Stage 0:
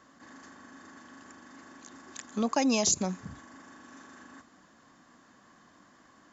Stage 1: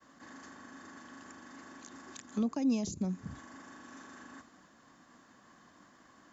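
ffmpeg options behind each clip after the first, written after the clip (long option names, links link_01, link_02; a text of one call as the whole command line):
ffmpeg -i in.wav -filter_complex "[0:a]agate=range=-33dB:threshold=-57dB:ratio=3:detection=peak,acrossover=split=340[link_01][link_02];[link_02]acompressor=threshold=-46dB:ratio=4[link_03];[link_01][link_03]amix=inputs=2:normalize=0" out.wav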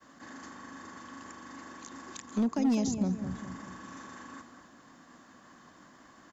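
ffmpeg -i in.wav -filter_complex "[0:a]volume=26.5dB,asoftclip=hard,volume=-26.5dB,asplit=2[link_01][link_02];[link_02]adelay=206,lowpass=frequency=1500:poles=1,volume=-8dB,asplit=2[link_03][link_04];[link_04]adelay=206,lowpass=frequency=1500:poles=1,volume=0.49,asplit=2[link_05][link_06];[link_06]adelay=206,lowpass=frequency=1500:poles=1,volume=0.49,asplit=2[link_07][link_08];[link_08]adelay=206,lowpass=frequency=1500:poles=1,volume=0.49,asplit=2[link_09][link_10];[link_10]adelay=206,lowpass=frequency=1500:poles=1,volume=0.49,asplit=2[link_11][link_12];[link_12]adelay=206,lowpass=frequency=1500:poles=1,volume=0.49[link_13];[link_01][link_03][link_05][link_07][link_09][link_11][link_13]amix=inputs=7:normalize=0,volume=4dB" out.wav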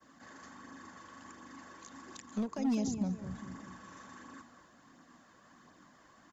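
ffmpeg -i in.wav -af "flanger=delay=0.1:depth=2.1:regen=-44:speed=1.4:shape=triangular,volume=-1dB" out.wav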